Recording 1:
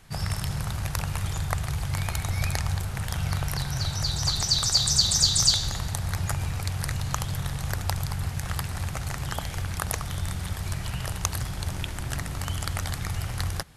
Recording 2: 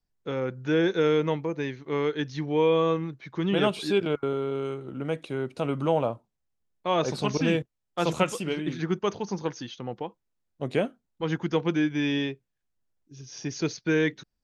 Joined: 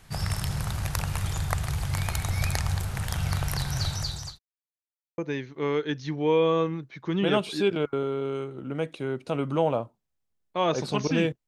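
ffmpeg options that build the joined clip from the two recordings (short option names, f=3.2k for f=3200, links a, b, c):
-filter_complex "[0:a]apad=whole_dur=11.47,atrim=end=11.47,asplit=2[a][b];[a]atrim=end=4.39,asetpts=PTS-STARTPTS,afade=t=out:st=3.86:d=0.53[c];[b]atrim=start=4.39:end=5.18,asetpts=PTS-STARTPTS,volume=0[d];[1:a]atrim=start=1.48:end=7.77,asetpts=PTS-STARTPTS,afade=t=in:d=0.004:c=hsin[e];[c][d][e]concat=n=3:v=0:a=1"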